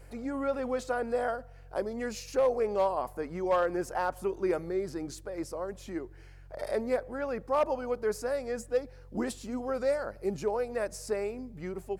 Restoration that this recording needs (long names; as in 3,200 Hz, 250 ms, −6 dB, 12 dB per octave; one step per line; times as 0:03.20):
clipped peaks rebuilt −19.5 dBFS
hum removal 46.1 Hz, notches 3